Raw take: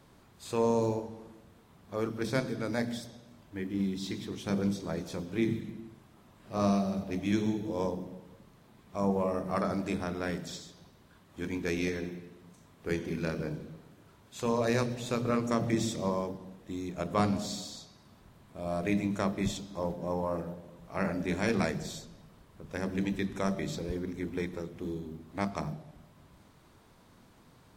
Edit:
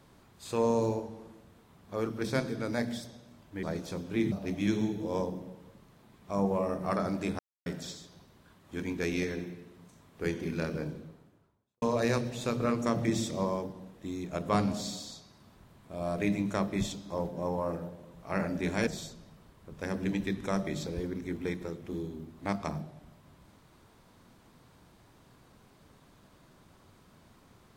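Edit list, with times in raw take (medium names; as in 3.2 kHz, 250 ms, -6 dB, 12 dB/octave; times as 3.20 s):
3.63–4.85 s: delete
5.54–6.97 s: delete
10.04–10.31 s: mute
13.49–14.47 s: studio fade out
21.52–21.79 s: delete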